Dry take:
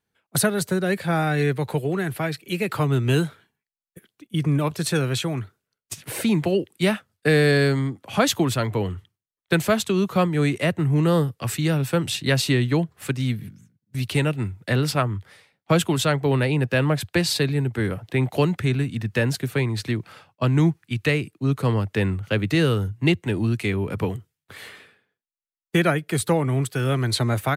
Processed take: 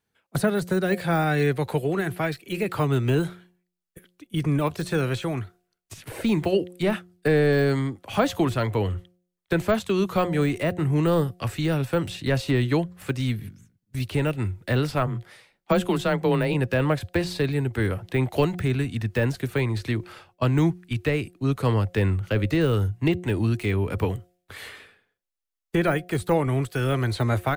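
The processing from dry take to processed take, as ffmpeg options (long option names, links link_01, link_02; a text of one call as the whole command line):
ffmpeg -i in.wav -filter_complex "[0:a]asplit=3[link_01][link_02][link_03];[link_01]afade=type=out:start_time=15.06:duration=0.02[link_04];[link_02]afreqshift=21,afade=type=in:start_time=15.06:duration=0.02,afade=type=out:start_time=16.53:duration=0.02[link_05];[link_03]afade=type=in:start_time=16.53:duration=0.02[link_06];[link_04][link_05][link_06]amix=inputs=3:normalize=0,deesser=0.9,bandreject=frequency=178.6:width_type=h:width=4,bandreject=frequency=357.2:width_type=h:width=4,bandreject=frequency=535.8:width_type=h:width=4,bandreject=frequency=714.4:width_type=h:width=4,asubboost=boost=7.5:cutoff=51,volume=1dB" out.wav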